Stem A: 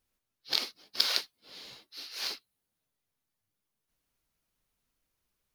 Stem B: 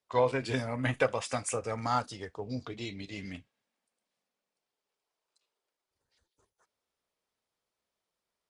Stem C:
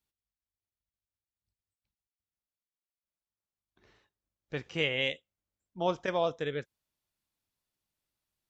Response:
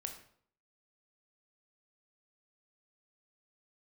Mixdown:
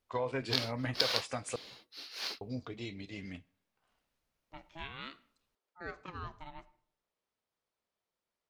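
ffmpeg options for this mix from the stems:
-filter_complex "[0:a]volume=-1dB[link_01];[1:a]alimiter=limit=-21.5dB:level=0:latency=1:release=155,volume=-3.5dB,asplit=3[link_02][link_03][link_04];[link_02]atrim=end=1.56,asetpts=PTS-STARTPTS,afade=type=out:start_time=1.556:duration=0.004:curve=hsin[link_05];[link_03]atrim=start=1.56:end=2.41,asetpts=PTS-STARTPTS,volume=0[link_06];[link_04]atrim=start=2.41,asetpts=PTS-STARTPTS,afade=type=in:duration=0.004:curve=hsin[link_07];[link_05][link_06][link_07]concat=n=3:v=0:a=1,asplit=2[link_08][link_09];[link_09]volume=-17dB[link_10];[2:a]aeval=exprs='val(0)*sin(2*PI*810*n/s+810*0.45/0.54*sin(2*PI*0.54*n/s))':channel_layout=same,volume=-14dB,asplit=2[link_11][link_12];[link_12]volume=-4.5dB[link_13];[3:a]atrim=start_sample=2205[link_14];[link_10][link_13]amix=inputs=2:normalize=0[link_15];[link_15][link_14]afir=irnorm=-1:irlink=0[link_16];[link_01][link_08][link_11][link_16]amix=inputs=4:normalize=0,highshelf=frequency=6400:gain=-9"

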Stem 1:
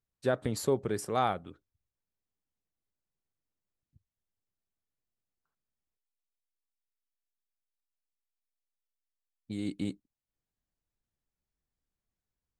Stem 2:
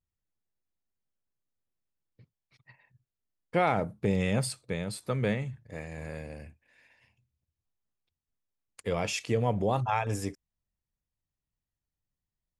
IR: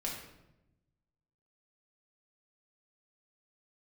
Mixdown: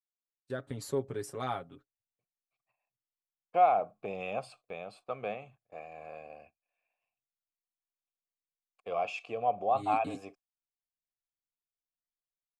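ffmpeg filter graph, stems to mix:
-filter_complex "[0:a]aecho=1:1:7.3:0.68,acontrast=62,adelay=250,volume=-19dB[link_01];[1:a]asplit=3[link_02][link_03][link_04];[link_02]bandpass=frequency=730:width_type=q:width=8,volume=0dB[link_05];[link_03]bandpass=frequency=1090:width_type=q:width=8,volume=-6dB[link_06];[link_04]bandpass=frequency=2440:width_type=q:width=8,volume=-9dB[link_07];[link_05][link_06][link_07]amix=inputs=3:normalize=0,bandreject=frequency=5700:width=19,volume=2dB[link_08];[link_01][link_08]amix=inputs=2:normalize=0,dynaudnorm=framelen=270:gausssize=5:maxgain=5.5dB,agate=range=-15dB:threshold=-57dB:ratio=16:detection=peak"

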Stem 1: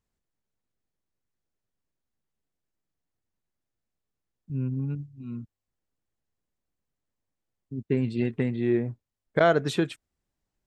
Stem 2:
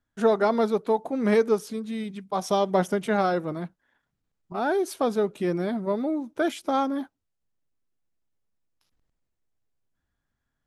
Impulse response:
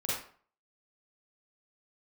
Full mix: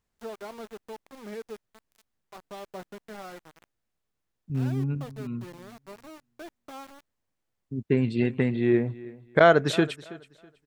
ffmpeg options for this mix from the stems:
-filter_complex "[0:a]equalizer=frequency=1500:width_type=o:width=2.9:gain=3.5,volume=1.5dB,asplit=2[link_01][link_02];[link_02]volume=-19.5dB[link_03];[1:a]aeval=exprs='val(0)*gte(abs(val(0)),0.0596)':channel_layout=same,volume=-18dB[link_04];[link_03]aecho=0:1:325|650|975|1300:1|0.25|0.0625|0.0156[link_05];[link_01][link_04][link_05]amix=inputs=3:normalize=0"

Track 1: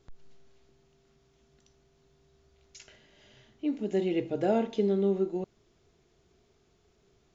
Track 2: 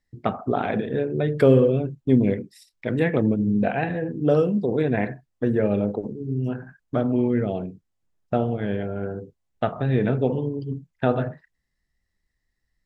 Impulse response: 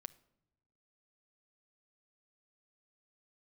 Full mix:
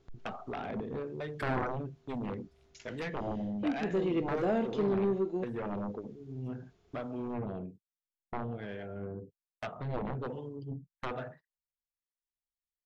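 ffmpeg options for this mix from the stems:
-filter_complex "[0:a]lowpass=frequency=3800:poles=1,volume=-0.5dB[link_01];[1:a]agate=range=-21dB:threshold=-39dB:ratio=16:detection=peak,acrossover=split=560[link_02][link_03];[link_02]aeval=exprs='val(0)*(1-0.7/2+0.7/2*cos(2*PI*1.2*n/s))':channel_layout=same[link_04];[link_03]aeval=exprs='val(0)*(1-0.7/2-0.7/2*cos(2*PI*1.2*n/s))':channel_layout=same[link_05];[link_04][link_05]amix=inputs=2:normalize=0,aeval=exprs='0.422*(cos(1*acos(clip(val(0)/0.422,-1,1)))-cos(1*PI/2))+0.168*(cos(3*acos(clip(val(0)/0.422,-1,1)))-cos(3*PI/2))+0.0266*(cos(7*acos(clip(val(0)/0.422,-1,1)))-cos(7*PI/2))':channel_layout=same,volume=-3.5dB[link_06];[link_01][link_06]amix=inputs=2:normalize=0,asoftclip=type=tanh:threshold=-23dB"

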